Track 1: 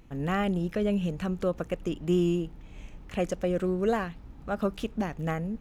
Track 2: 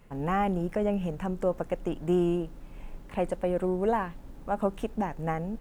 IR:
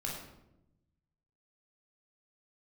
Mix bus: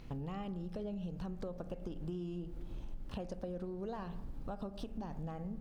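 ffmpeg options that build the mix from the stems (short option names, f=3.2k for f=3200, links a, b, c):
-filter_complex "[0:a]lowpass=f=4.8k:t=q:w=3.2,volume=-1dB[a];[1:a]lowshelf=f=220:g=8,acompressor=threshold=-28dB:ratio=6,volume=-6.5dB,asplit=3[b][c][d];[c]volume=-8dB[e];[d]apad=whole_len=247059[f];[a][f]sidechaincompress=threshold=-43dB:ratio=8:attack=16:release=971[g];[2:a]atrim=start_sample=2205[h];[e][h]afir=irnorm=-1:irlink=0[i];[g][b][i]amix=inputs=3:normalize=0,acompressor=threshold=-39dB:ratio=5"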